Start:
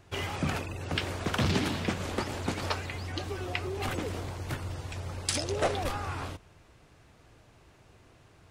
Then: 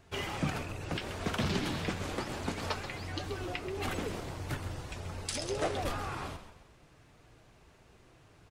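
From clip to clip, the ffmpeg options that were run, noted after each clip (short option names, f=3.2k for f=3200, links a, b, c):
-filter_complex "[0:a]alimiter=limit=-19dB:level=0:latency=1:release=241,flanger=delay=4.4:depth=2.5:regen=-55:speed=0.77:shape=sinusoidal,asplit=2[a][b];[b]asplit=4[c][d][e][f];[c]adelay=131,afreqshift=-66,volume=-10.5dB[g];[d]adelay=262,afreqshift=-132,volume=-18.5dB[h];[e]adelay=393,afreqshift=-198,volume=-26.4dB[i];[f]adelay=524,afreqshift=-264,volume=-34.4dB[j];[g][h][i][j]amix=inputs=4:normalize=0[k];[a][k]amix=inputs=2:normalize=0,volume=2dB"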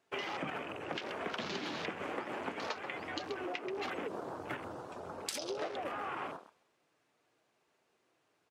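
-af "highpass=310,afwtdn=0.00562,acompressor=threshold=-39dB:ratio=10,volume=4dB"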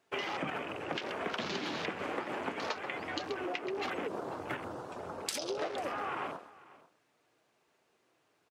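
-af "aecho=1:1:494:0.1,volume=2.5dB"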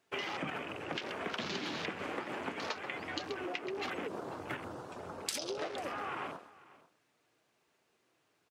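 -af "equalizer=f=670:t=o:w=2.3:g=-3.5"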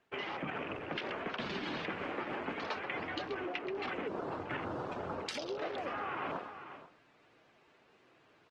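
-af "lowpass=3.3k,areverse,acompressor=threshold=-46dB:ratio=8,areverse,volume=10.5dB" -ar 48000 -c:a libopus -b:a 20k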